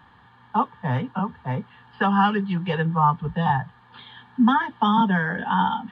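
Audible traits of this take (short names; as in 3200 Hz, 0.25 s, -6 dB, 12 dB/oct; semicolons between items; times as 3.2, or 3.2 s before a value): noise floor -54 dBFS; spectral tilt -5.0 dB/oct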